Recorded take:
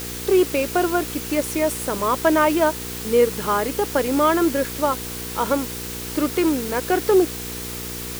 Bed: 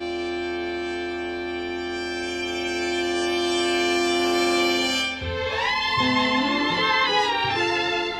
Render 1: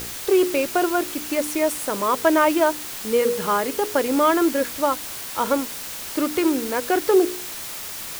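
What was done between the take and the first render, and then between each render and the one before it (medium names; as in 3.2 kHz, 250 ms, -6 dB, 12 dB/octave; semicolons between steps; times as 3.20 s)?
de-hum 60 Hz, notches 8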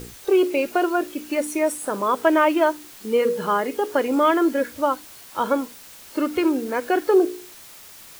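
noise print and reduce 11 dB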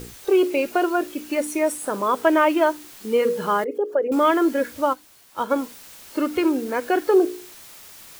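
3.64–4.12 s: resonances exaggerated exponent 2; 4.93–5.56 s: upward expansion, over -34 dBFS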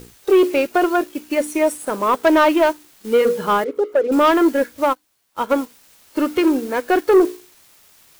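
waveshaping leveller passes 2; upward expansion 1.5:1, over -30 dBFS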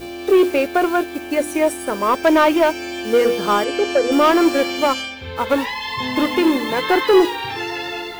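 add bed -3 dB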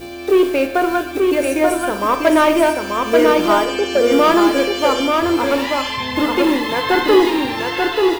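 delay 886 ms -3.5 dB; Schroeder reverb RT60 0.63 s, combs from 26 ms, DRR 8.5 dB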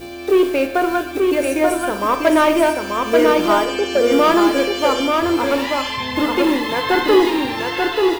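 trim -1 dB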